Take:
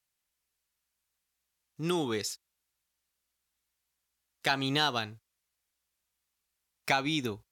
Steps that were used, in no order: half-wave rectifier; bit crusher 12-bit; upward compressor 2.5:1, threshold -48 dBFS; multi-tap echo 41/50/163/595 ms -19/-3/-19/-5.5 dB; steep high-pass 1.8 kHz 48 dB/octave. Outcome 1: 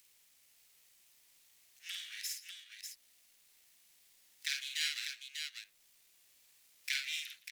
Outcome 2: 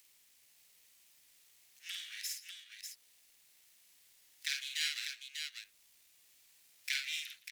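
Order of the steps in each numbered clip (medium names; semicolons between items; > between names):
upward compressor > half-wave rectifier > steep high-pass > bit crusher > multi-tap echo; half-wave rectifier > upward compressor > steep high-pass > bit crusher > multi-tap echo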